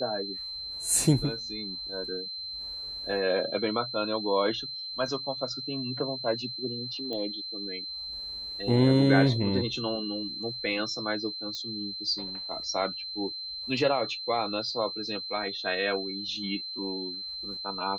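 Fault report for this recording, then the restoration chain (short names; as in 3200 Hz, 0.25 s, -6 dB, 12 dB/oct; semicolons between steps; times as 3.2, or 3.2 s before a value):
tone 4100 Hz -35 dBFS
7.13 pop -23 dBFS
11.55 pop -22 dBFS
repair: de-click; notch 4100 Hz, Q 30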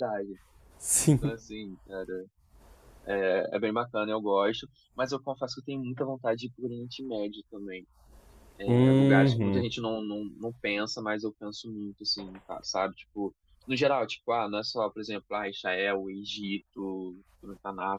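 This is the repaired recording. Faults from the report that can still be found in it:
7.13 pop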